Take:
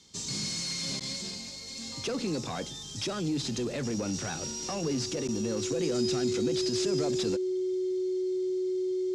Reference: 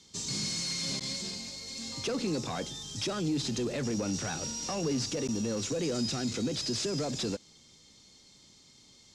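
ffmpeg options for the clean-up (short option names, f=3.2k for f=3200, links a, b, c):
-af "bandreject=f=370:w=30"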